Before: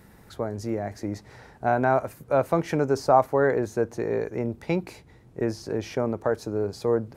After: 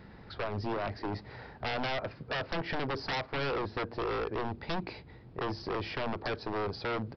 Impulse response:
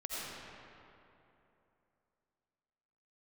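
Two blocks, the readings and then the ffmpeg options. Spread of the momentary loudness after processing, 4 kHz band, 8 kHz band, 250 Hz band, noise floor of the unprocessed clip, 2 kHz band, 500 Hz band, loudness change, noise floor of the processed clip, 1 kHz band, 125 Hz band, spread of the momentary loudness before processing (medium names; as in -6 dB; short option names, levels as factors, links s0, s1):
6 LU, +5.5 dB, under -15 dB, -10.0 dB, -53 dBFS, -2.5 dB, -11.5 dB, -9.0 dB, -52 dBFS, -9.0 dB, -7.5 dB, 12 LU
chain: -af "acompressor=threshold=0.0708:ratio=4,aresample=11025,aeval=exprs='0.0376*(abs(mod(val(0)/0.0376+3,4)-2)-1)':c=same,aresample=44100,volume=1.12"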